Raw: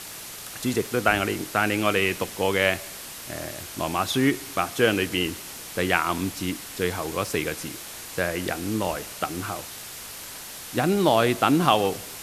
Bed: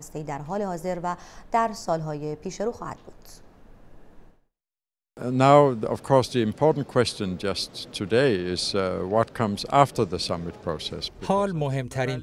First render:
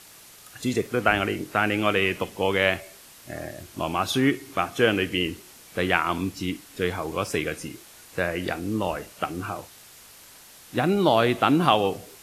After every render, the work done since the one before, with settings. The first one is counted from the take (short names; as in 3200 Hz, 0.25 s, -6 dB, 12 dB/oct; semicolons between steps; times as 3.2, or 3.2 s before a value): noise print and reduce 10 dB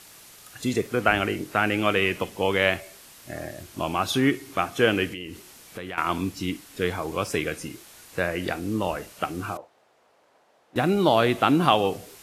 5.09–5.98 compressor 4:1, threshold -33 dBFS; 9.57–10.76 band-pass 620 Hz, Q 1.6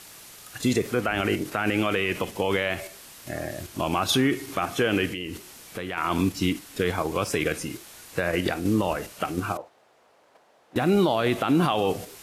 in parallel at +1.5 dB: level quantiser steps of 15 dB; on the sum: limiter -12.5 dBFS, peak gain reduction 10.5 dB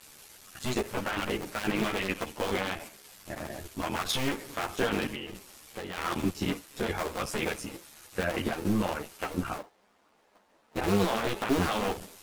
cycle switcher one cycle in 2, muted; ensemble effect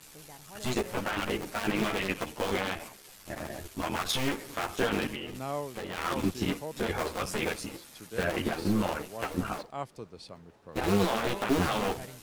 add bed -19.5 dB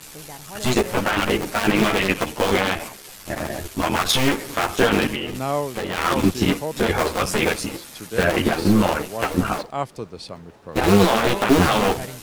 gain +11 dB